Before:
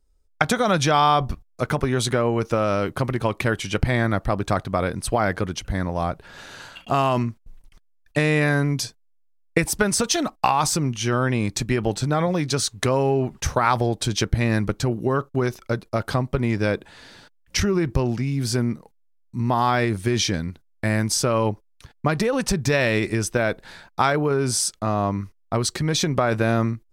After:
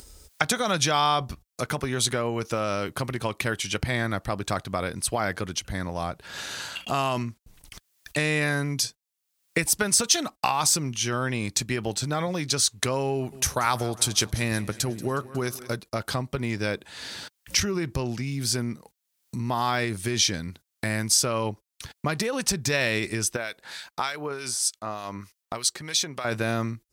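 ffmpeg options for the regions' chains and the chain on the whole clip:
ffmpeg -i in.wav -filter_complex "[0:a]asettb=1/sr,asplit=3[link_01][link_02][link_03];[link_01]atrim=end=13.144[link_04];[link_02]atrim=start=13.14:end=15.76,asetpts=PTS-STARTPTS,afade=type=in:duration=0.004:curve=qsin,afade=type=out:start_time=2.616:duration=0.004:curve=qsin,equalizer=frequency=11000:width_type=o:width=0.68:gain=10,aecho=1:1:182|364|546|728|910:0.106|0.0614|0.0356|0.0207|0.012,atrim=end_sample=115542[link_05];[link_03]atrim=start=15.756[link_06];[link_04][link_05]acrossfade=duration=0.004:curve1=hsin:curve2=qsin[link_07];[link_07][link_06]acrossfade=duration=0.004:curve1=qsin:curve2=hsin,asettb=1/sr,asplit=3[link_08][link_09][link_10];[link_08]atrim=end=23.364[link_11];[link_09]atrim=start=23.36:end=26.25,asetpts=PTS-STARTPTS,afade=type=in:duration=0.004:curve=qsin,afade=type=out:start_time=2.886:duration=0.004:curve=qsin,lowshelf=frequency=330:gain=-11.5,acrossover=split=1800[link_12][link_13];[link_12]aeval=exprs='val(0)*(1-0.7/2+0.7/2*cos(2*PI*3.3*n/s))':channel_layout=same[link_14];[link_13]aeval=exprs='val(0)*(1-0.7/2-0.7/2*cos(2*PI*3.3*n/s))':channel_layout=same[link_15];[link_14][link_15]amix=inputs=2:normalize=0[link_16];[link_10]atrim=start=26.246[link_17];[link_11][link_16]acrossfade=duration=0.004:curve1=hsin:curve2=qsin[link_18];[link_18][link_17]acrossfade=duration=0.004:curve1=qsin:curve2=hsin,highpass=53,highshelf=frequency=2300:gain=11,acompressor=mode=upward:threshold=-19dB:ratio=2.5,volume=-7dB" out.wav

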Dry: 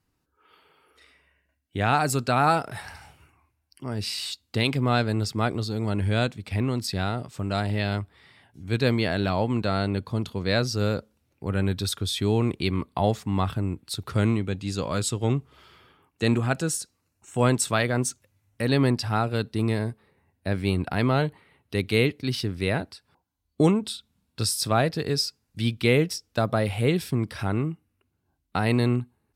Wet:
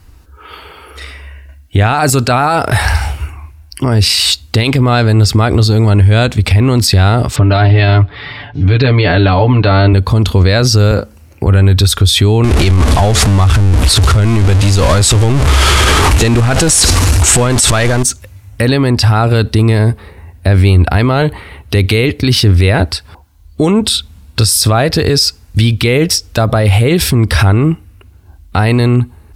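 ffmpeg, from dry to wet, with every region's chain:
ffmpeg -i in.wav -filter_complex "[0:a]asettb=1/sr,asplit=3[link_01][link_02][link_03];[link_01]atrim=end=7.364[link_04];[link_02]atrim=start=7.36:end=9.93,asetpts=PTS-STARTPTS,afade=type=in:duration=0.004:curve=qsin,afade=type=out:start_time=2.566:duration=0.004:curve=qsin,lowpass=frequency=4200:width=0.5412,lowpass=frequency=4200:width=1.3066,aecho=1:1:6.9:0.84,atrim=end_sample=113337[link_05];[link_03]atrim=start=9.926[link_06];[link_04][link_05]acrossfade=duration=0.004:curve1=hsin:curve2=qsin[link_07];[link_07][link_06]acrossfade=duration=0.004:curve1=qsin:curve2=hsin,asettb=1/sr,asplit=3[link_08][link_09][link_10];[link_08]atrim=end=10.914[link_11];[link_09]atrim=start=10.91:end=11.47,asetpts=PTS-STARTPTS,afade=type=in:duration=0.004:curve=qsin,afade=type=out:start_time=0.556:duration=0.004:curve=qsin,highpass=98,equalizer=frequency=3600:width_type=o:width=0.32:gain=-8,asplit=2[link_12][link_13];[link_13]adelay=38,volume=-12dB[link_14];[link_12][link_14]amix=inputs=2:normalize=0,atrim=end_sample=24696[link_15];[link_10]atrim=start=11.466[link_16];[link_11][link_15]acrossfade=duration=0.004:curve1=hsin:curve2=qsin[link_17];[link_17][link_16]acrossfade=duration=0.004:curve1=qsin:curve2=hsin,asettb=1/sr,asplit=3[link_18][link_19][link_20];[link_18]atrim=end=12.444[link_21];[link_19]atrim=start=12.44:end=18.03,asetpts=PTS-STARTPTS,afade=type=in:duration=0.004:curve=qsin,afade=type=out:start_time=5.586:duration=0.004:curve=qsin,aeval=exprs='val(0)+0.5*0.0668*sgn(val(0))':channel_layout=same,lowpass=frequency=11000:width=0.5412,lowpass=frequency=11000:width=1.3066[link_22];[link_20]atrim=start=18.026[link_23];[link_21][link_22]acrossfade=duration=0.004:curve1=hsin:curve2=qsin[link_24];[link_24][link_23]acrossfade=duration=0.004:curve1=qsin:curve2=hsin,lowshelf=frequency=100:width_type=q:width=1.5:gain=12.5,acompressor=threshold=-29dB:ratio=2,alimiter=level_in=27dB:limit=-1dB:release=50:level=0:latency=1,volume=-1dB" out.wav

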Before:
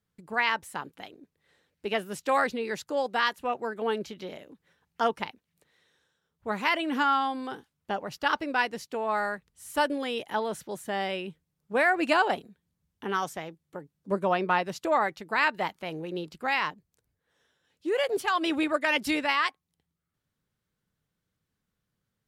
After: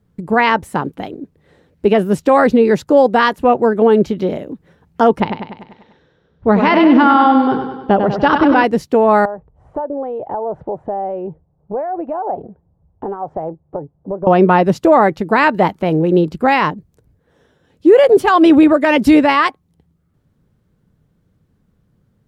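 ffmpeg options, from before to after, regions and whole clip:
ffmpeg -i in.wav -filter_complex "[0:a]asettb=1/sr,asplit=3[link_01][link_02][link_03];[link_01]atrim=end=5.204[link_04];[link_02]atrim=start=5.2:end=8.64,asetpts=PTS-STARTPTS,afade=type=in:duration=0.004:curve=qsin,afade=type=out:start_time=3.436:duration=0.004:curve=qsin,lowpass=frequency=5200:width=0.5412,lowpass=frequency=5200:width=1.3066,aecho=1:1:98|196|294|392|490|588|686:0.447|0.255|0.145|0.0827|0.0472|0.0269|0.0153,atrim=end_sample=151704[link_05];[link_03]atrim=start=8.636[link_06];[link_04][link_05]acrossfade=duration=0.004:curve1=hsin:curve2=qsin[link_07];[link_07][link_06]acrossfade=duration=0.004:curve1=qsin:curve2=hsin,asettb=1/sr,asplit=3[link_08][link_09][link_10];[link_08]atrim=end=9.254[link_11];[link_09]atrim=start=9.25:end=14.27,asetpts=PTS-STARTPTS,afade=type=in:duration=0.004:curve=qsin,afade=type=out:start_time=5.016:duration=0.004:curve=qsin,acompressor=threshold=-38dB:ratio=16:attack=3.2:release=140:knee=1:detection=peak,lowpass=frequency=780:width_type=q:width=2.5,equalizer=frequency=220:width=1.2:gain=-10[link_12];[link_10]atrim=start=14.266[link_13];[link_11][link_12]acrossfade=duration=0.004:curve1=hsin:curve2=qsin[link_14];[link_14][link_13]acrossfade=duration=0.004:curve1=qsin:curve2=hsin,tiltshelf=frequency=970:gain=9.5,alimiter=level_in=16dB:limit=-1dB:release=50:level=0:latency=1,volume=-1dB" out.wav

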